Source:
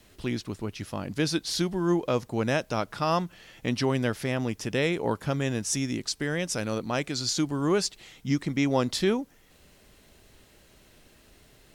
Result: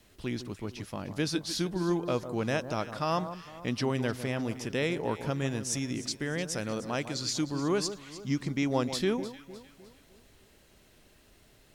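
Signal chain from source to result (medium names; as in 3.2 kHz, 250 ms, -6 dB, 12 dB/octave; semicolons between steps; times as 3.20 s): echo whose repeats swap between lows and highs 152 ms, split 1.3 kHz, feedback 63%, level -10.5 dB; trim -4 dB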